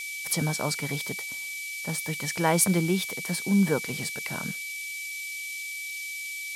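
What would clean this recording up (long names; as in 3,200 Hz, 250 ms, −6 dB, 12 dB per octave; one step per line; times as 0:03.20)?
notch filter 2,300 Hz, Q 30
noise reduction from a noise print 30 dB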